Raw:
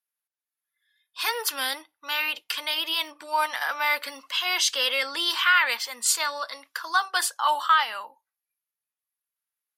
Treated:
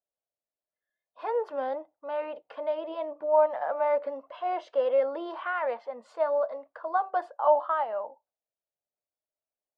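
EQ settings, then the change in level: synth low-pass 620 Hz, resonance Q 4.9; 0.0 dB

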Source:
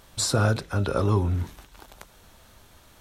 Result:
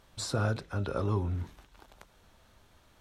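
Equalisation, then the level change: high shelf 7200 Hz -9.5 dB; -7.5 dB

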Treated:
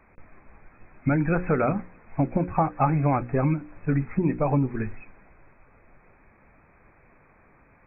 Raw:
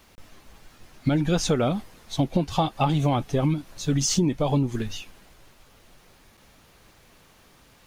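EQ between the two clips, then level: notches 60/120/180/240/300/360/420/480/540 Hz; dynamic EQ 1500 Hz, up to +6 dB, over -45 dBFS, Q 1.7; brick-wall FIR low-pass 2600 Hz; 0.0 dB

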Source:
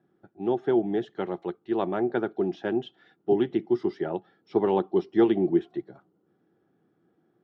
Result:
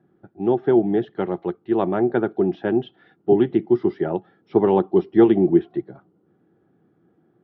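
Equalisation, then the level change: air absorption 260 m; low shelf 160 Hz +6 dB; +6.0 dB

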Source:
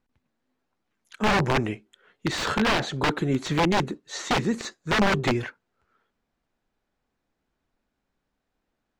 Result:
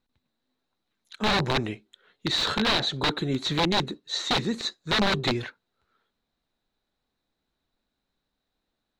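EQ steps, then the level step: bell 3900 Hz +14.5 dB 0.33 oct; -3.0 dB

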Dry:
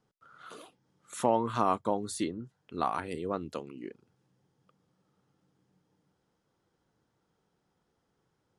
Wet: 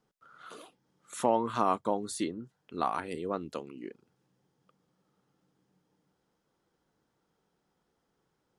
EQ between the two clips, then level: bell 100 Hz -7 dB 0.84 oct; 0.0 dB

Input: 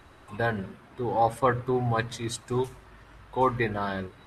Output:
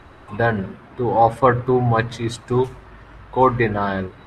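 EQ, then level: LPF 2500 Hz 6 dB/oct; +9.0 dB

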